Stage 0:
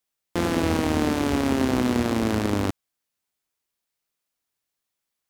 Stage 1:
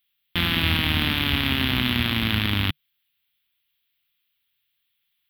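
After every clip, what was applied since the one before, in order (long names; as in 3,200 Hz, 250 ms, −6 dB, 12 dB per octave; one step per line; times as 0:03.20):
drawn EQ curve 150 Hz 0 dB, 490 Hz −19 dB, 3,400 Hz +13 dB, 7,000 Hz −25 dB, 13,000 Hz +6 dB
level +4 dB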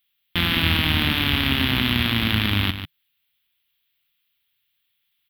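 single-tap delay 145 ms −10 dB
level +1.5 dB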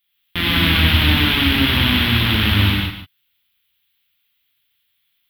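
reverb whose tail is shaped and stops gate 220 ms flat, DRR −4.5 dB
level −1 dB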